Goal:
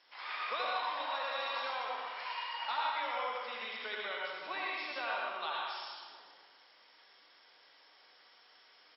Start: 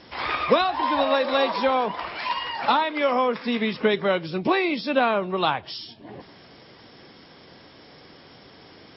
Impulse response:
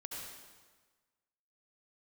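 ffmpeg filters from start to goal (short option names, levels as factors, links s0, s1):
-filter_complex "[0:a]highpass=960,aecho=1:1:121|242|363|484|605|726:0.251|0.146|0.0845|0.049|0.0284|0.0165[s0];[1:a]atrim=start_sample=2205[s1];[s0][s1]afir=irnorm=-1:irlink=0,volume=0.355"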